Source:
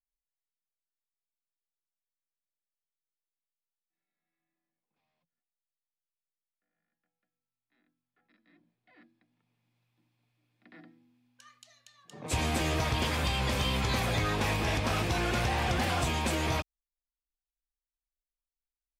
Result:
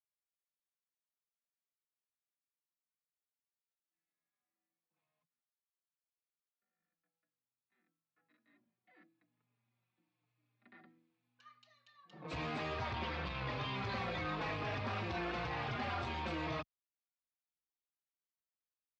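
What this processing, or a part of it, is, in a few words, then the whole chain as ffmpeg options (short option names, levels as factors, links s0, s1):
barber-pole flanger into a guitar amplifier: -filter_complex "[0:a]asettb=1/sr,asplit=3[s0][s1][s2];[s0]atrim=end=12.954[s3];[s1]atrim=start=12.95:end=13.75,asetpts=PTS-STARTPTS,afade=t=in:d=0.004:c=qsin,afade=t=out:st=0.796:d=0.004:c=qsin,lowpass=5800[s4];[s2]atrim=start=13.746[s5];[s3][s4]acrossfade=d=0.004:c1=hsin:c2=qsin[s6];[s6][s5]acrossfade=d=0.004:c1=qsin:c2=hsin,asplit=2[s7][s8];[s8]adelay=4.3,afreqshift=-0.96[s9];[s7][s9]amix=inputs=2:normalize=1,asoftclip=type=tanh:threshold=0.0335,highpass=98,equalizer=f=250:t=q:w=4:g=-3,equalizer=f=1200:t=q:w=4:g=4,equalizer=f=3200:t=q:w=4:g=-4,lowpass=f=4200:w=0.5412,lowpass=f=4200:w=1.3066,volume=0.708"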